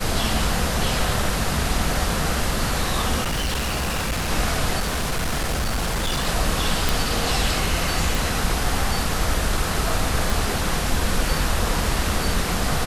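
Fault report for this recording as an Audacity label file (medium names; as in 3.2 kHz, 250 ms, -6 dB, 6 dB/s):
3.210000	4.310000	clipped -20.5 dBFS
4.790000	6.280000	clipped -19.5 dBFS
6.890000	6.890000	pop
8.150000	8.150000	pop
10.300000	10.300000	pop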